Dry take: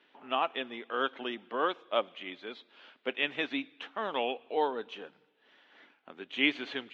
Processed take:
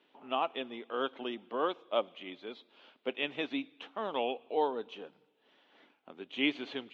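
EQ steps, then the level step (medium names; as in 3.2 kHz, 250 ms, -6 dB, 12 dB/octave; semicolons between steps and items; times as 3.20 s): peaking EQ 1.7 kHz -8 dB 0.87 oct; treble shelf 4.4 kHz -5.5 dB; 0.0 dB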